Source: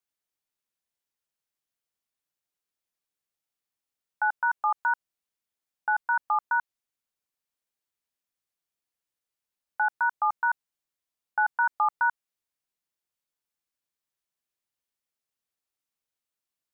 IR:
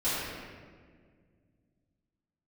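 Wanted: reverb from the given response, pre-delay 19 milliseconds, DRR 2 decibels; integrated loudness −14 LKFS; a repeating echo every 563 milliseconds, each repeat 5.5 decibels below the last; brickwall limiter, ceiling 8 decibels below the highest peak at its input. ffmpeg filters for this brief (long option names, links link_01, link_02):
-filter_complex "[0:a]alimiter=limit=-24dB:level=0:latency=1,aecho=1:1:563|1126|1689|2252|2815|3378|3941:0.531|0.281|0.149|0.079|0.0419|0.0222|0.0118,asplit=2[link_01][link_02];[1:a]atrim=start_sample=2205,adelay=19[link_03];[link_02][link_03]afir=irnorm=-1:irlink=0,volume=-12.5dB[link_04];[link_01][link_04]amix=inputs=2:normalize=0,volume=20dB"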